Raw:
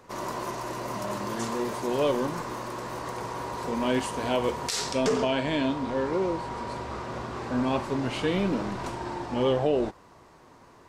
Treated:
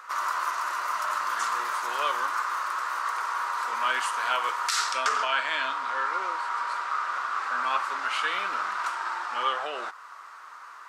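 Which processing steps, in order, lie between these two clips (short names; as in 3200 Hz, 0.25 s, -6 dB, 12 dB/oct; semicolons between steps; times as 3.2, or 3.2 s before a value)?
resonant high-pass 1300 Hz, resonance Q 5.8; in parallel at -2 dB: compressor, threshold -41 dBFS, peak gain reduction 18 dB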